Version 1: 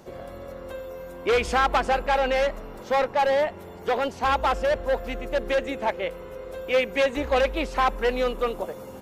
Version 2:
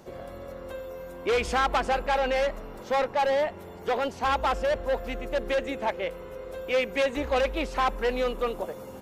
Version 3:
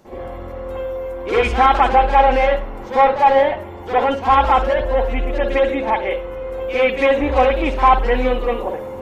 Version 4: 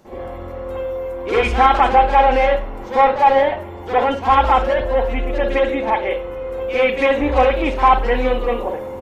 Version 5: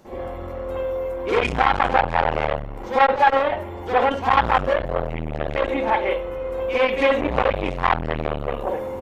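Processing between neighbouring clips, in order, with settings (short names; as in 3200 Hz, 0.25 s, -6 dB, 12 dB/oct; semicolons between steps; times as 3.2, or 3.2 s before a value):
soft clip -15 dBFS, distortion -21 dB; gain -1.5 dB
reverb, pre-delay 47 ms, DRR -11 dB; gain -2 dB
doubler 34 ms -13.5 dB
core saturation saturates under 1100 Hz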